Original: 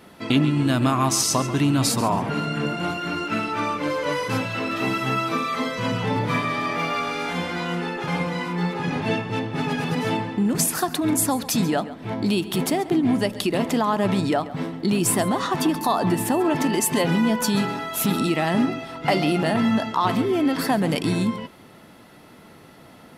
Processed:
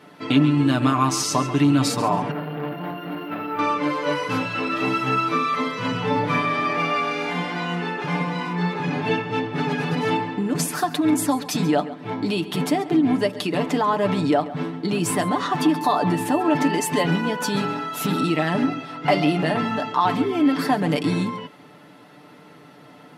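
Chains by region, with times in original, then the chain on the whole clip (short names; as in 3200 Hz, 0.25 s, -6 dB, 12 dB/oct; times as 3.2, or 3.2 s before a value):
2.31–3.59 tape spacing loss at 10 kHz 31 dB + careless resampling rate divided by 3×, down filtered, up hold + core saturation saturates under 870 Hz
whole clip: HPF 150 Hz 12 dB/oct; high shelf 7200 Hz -11.5 dB; comb 6.8 ms, depth 64%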